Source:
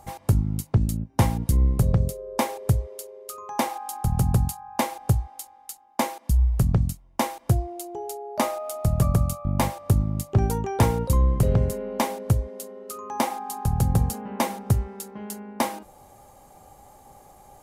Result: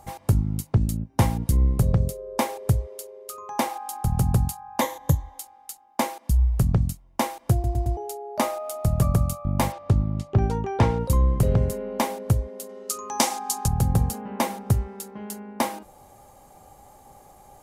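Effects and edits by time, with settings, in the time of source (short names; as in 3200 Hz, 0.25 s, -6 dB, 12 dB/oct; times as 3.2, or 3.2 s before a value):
4.81–5.39 ripple EQ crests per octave 1.1, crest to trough 11 dB
7.53 stutter in place 0.11 s, 4 plays
9.72–11 LPF 4300 Hz
12.69–13.68 bell 6400 Hz +13.5 dB 1.9 oct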